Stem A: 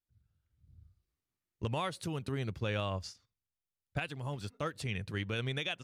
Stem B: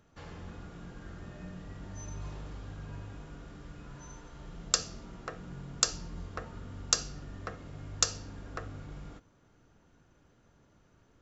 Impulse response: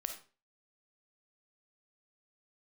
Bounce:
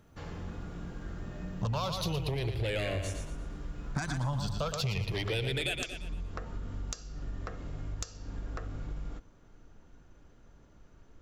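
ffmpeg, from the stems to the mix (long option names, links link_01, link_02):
-filter_complex "[0:a]bandreject=frequency=50:width_type=h:width=6,bandreject=frequency=100:width_type=h:width=6,aeval=exprs='0.0794*sin(PI/2*2.51*val(0)/0.0794)':channel_layout=same,asplit=2[link_01][link_02];[link_02]afreqshift=-0.35[link_03];[link_01][link_03]amix=inputs=2:normalize=1,volume=2.5dB,asplit=2[link_04][link_05];[link_05]volume=-8dB[link_06];[1:a]asubboost=boost=3.5:cutoff=53,acompressor=threshold=-38dB:ratio=10,lowshelf=frequency=500:gain=4,volume=1.5dB[link_07];[link_06]aecho=0:1:116|232|348|464|580:1|0.37|0.137|0.0507|0.0187[link_08];[link_04][link_07][link_08]amix=inputs=3:normalize=0,acompressor=threshold=-29dB:ratio=6"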